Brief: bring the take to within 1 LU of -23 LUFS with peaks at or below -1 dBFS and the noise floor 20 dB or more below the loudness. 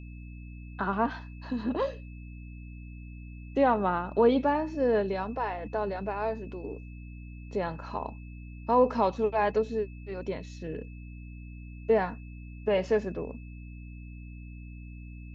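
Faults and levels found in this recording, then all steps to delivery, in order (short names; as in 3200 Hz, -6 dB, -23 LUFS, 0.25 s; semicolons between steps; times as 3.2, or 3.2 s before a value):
hum 60 Hz; harmonics up to 300 Hz; hum level -41 dBFS; steady tone 2600 Hz; tone level -56 dBFS; loudness -29.5 LUFS; peak -11.5 dBFS; loudness target -23.0 LUFS
-> notches 60/120/180/240/300 Hz; notch 2600 Hz, Q 30; gain +6.5 dB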